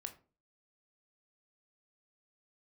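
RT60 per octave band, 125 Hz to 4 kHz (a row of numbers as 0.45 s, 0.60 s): 0.50 s, 0.50 s, 0.40 s, 0.35 s, 0.25 s, 0.20 s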